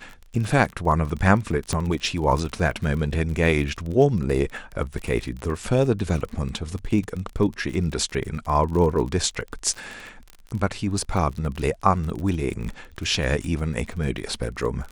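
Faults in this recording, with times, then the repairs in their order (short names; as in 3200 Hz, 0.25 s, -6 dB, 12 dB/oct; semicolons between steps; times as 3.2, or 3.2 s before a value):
crackle 34/s -29 dBFS
1.73 pop -11 dBFS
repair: de-click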